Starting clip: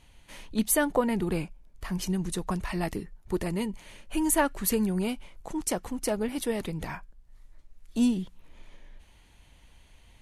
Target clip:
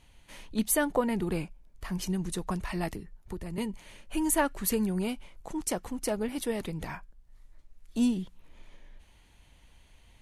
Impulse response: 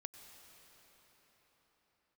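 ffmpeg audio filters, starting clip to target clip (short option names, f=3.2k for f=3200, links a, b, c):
-filter_complex "[0:a]asettb=1/sr,asplit=3[a][b][c];[a]atrim=end=2.924[d];[b]atrim=start=2.92:end=3.58,asetpts=PTS-STARTPTS,afade=t=in:d=0.004:c=qsin,afade=t=out:st=0.656:d=0.004:c=qsin,acrossover=split=150[e][f];[f]acompressor=threshold=-37dB:ratio=6[g];[e][g]amix=inputs=2:normalize=0[h];[c]atrim=start=3.576[i];[d][h]acrossfade=d=0.004:c1=hsin:c2=qsin[j];[j][i]acrossfade=d=0.004:c1=qsin:c2=hsin,volume=-2dB"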